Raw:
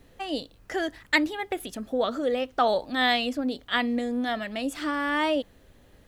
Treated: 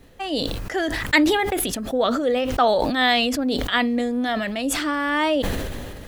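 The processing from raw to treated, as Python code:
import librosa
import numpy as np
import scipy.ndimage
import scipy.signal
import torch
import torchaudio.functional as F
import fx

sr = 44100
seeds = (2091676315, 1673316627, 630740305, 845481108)

y = fx.sustainer(x, sr, db_per_s=27.0)
y = y * 10.0 ** (4.0 / 20.0)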